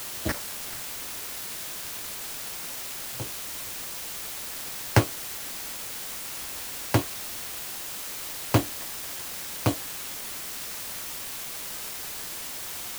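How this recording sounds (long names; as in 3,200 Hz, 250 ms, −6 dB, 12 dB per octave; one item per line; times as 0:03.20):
aliases and images of a low sample rate 3,600 Hz, jitter 0%
chopped level 1.1 Hz, depth 65%, duty 35%
a quantiser's noise floor 8 bits, dither triangular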